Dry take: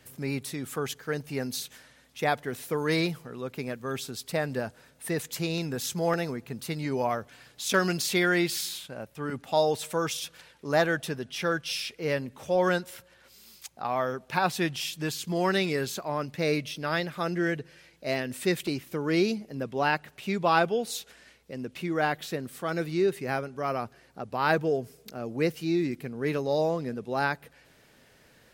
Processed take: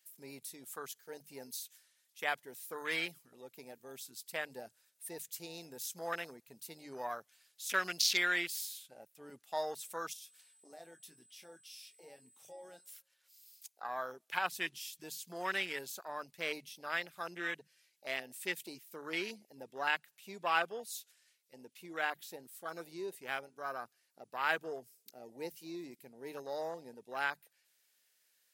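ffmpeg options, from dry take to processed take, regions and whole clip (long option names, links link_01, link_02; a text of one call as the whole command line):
ffmpeg -i in.wav -filter_complex "[0:a]asettb=1/sr,asplit=3[link_01][link_02][link_03];[link_01]atrim=end=10.134[link_04];[link_02]atrim=start=10.13:end=12.89,asetpts=PTS-STARTPTS,afade=type=in:duration=0.004:curve=qsin,afade=type=out:start_time=2.756:duration=0.004:curve=qsin,acompressor=threshold=-41dB:ratio=2.5:attack=3.2:release=140:knee=1:detection=peak,aeval=exprs='val(0)+0.00158*sin(2*PI*8100*n/s)':channel_layout=same,asplit=2[link_05][link_06];[link_06]adelay=24,volume=-8dB[link_07];[link_05][link_07]amix=inputs=2:normalize=0,atrim=end_sample=121716[link_08];[link_03]atrim=start=12.886[link_09];[link_04][link_08]acrossfade=duration=0.004:curve1=hsin:curve2=qsin[link_10];[link_10][link_09]acrossfade=duration=0.004:curve1=qsin:curve2=hsin,bandreject=frequency=50:width_type=h:width=6,bandreject=frequency=100:width_type=h:width=6,bandreject=frequency=150:width_type=h:width=6,afwtdn=0.0251,aderivative,volume=8.5dB" out.wav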